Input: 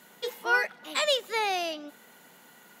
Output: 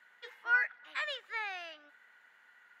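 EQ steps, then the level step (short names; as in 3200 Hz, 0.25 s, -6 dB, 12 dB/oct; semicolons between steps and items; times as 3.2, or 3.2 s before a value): band-pass 1700 Hz, Q 3.3; 0.0 dB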